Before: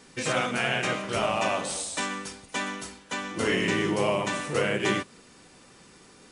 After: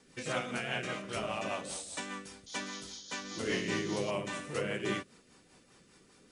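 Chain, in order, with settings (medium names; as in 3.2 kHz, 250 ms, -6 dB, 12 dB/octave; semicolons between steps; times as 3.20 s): painted sound noise, 2.46–4.11 s, 3–7 kHz -39 dBFS; rotary cabinet horn 5 Hz; trim -6.5 dB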